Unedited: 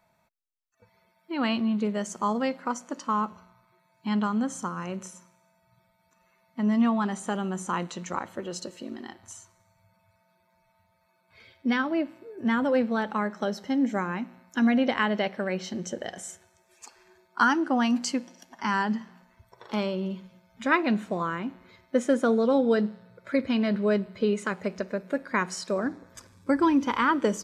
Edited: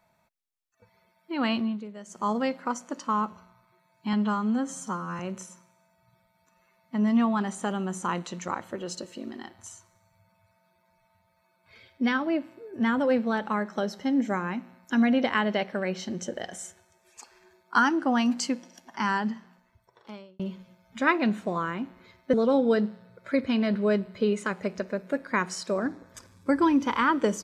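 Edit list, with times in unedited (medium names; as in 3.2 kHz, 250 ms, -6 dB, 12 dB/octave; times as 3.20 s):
1.59–2.30 s: dip -13 dB, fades 0.25 s
4.13–4.84 s: stretch 1.5×
18.69–20.04 s: fade out
21.98–22.34 s: delete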